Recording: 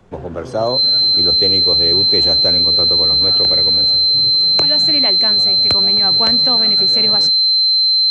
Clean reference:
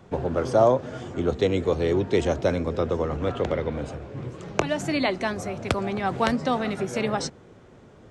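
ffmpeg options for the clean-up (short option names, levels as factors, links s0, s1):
-af "bandreject=f=4100:w=30,agate=range=0.0891:threshold=0.562"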